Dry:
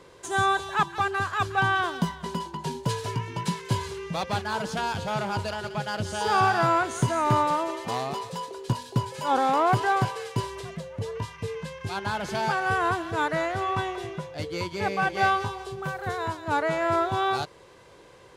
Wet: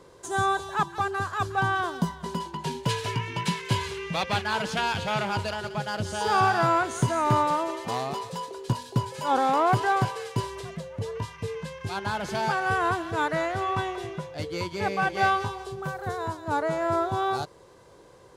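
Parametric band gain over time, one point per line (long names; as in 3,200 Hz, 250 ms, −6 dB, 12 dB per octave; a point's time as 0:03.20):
parametric band 2,500 Hz 1.3 octaves
0:02.14 −7 dB
0:02.42 0 dB
0:02.88 +7.5 dB
0:05.14 +7.5 dB
0:05.75 −1 dB
0:15.47 −1 dB
0:16.20 −8.5 dB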